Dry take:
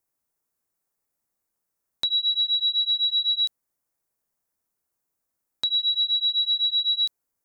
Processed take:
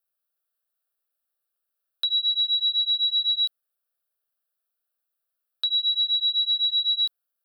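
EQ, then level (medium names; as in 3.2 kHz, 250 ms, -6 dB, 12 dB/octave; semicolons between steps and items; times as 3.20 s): low-pass 1.9 kHz 6 dB/octave; tilt EQ +4.5 dB/octave; static phaser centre 1.4 kHz, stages 8; -1.0 dB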